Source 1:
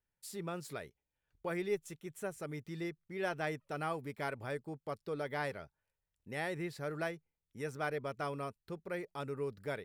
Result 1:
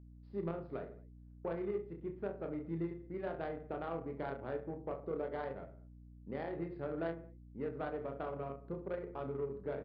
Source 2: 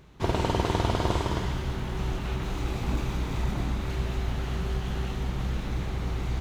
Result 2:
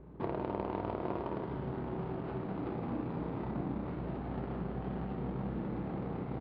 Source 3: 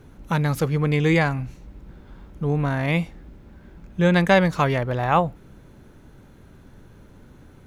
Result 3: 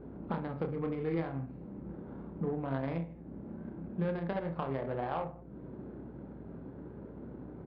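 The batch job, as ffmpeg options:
-af "highpass=200,alimiter=limit=-13dB:level=0:latency=1:release=324,acompressor=threshold=-43dB:ratio=3,aecho=1:1:30|66|109.2|161|223.2:0.631|0.398|0.251|0.158|0.1,adynamicsmooth=sensitivity=2:basefreq=620,aeval=exprs='val(0)+0.001*(sin(2*PI*60*n/s)+sin(2*PI*2*60*n/s)/2+sin(2*PI*3*60*n/s)/3+sin(2*PI*4*60*n/s)/4+sin(2*PI*5*60*n/s)/5)':c=same,aresample=11025,aresample=44100,volume=6dB"

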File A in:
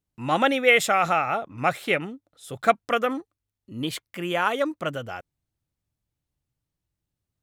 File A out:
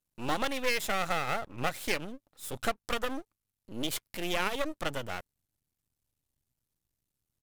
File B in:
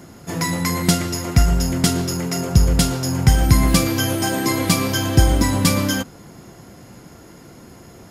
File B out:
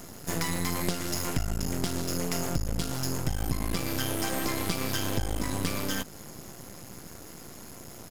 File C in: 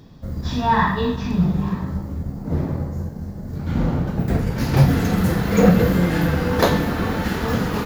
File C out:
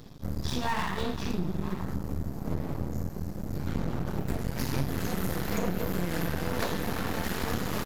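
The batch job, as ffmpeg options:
-filter_complex "[0:a]acrossover=split=4600[a][b];[b]acompressor=threshold=-34dB:ratio=4:attack=1:release=60[c];[a][c]amix=inputs=2:normalize=0,aresample=32000,aresample=44100,acompressor=threshold=-24dB:ratio=5,aeval=exprs='max(val(0),0)':c=same,crystalizer=i=1.5:c=0"

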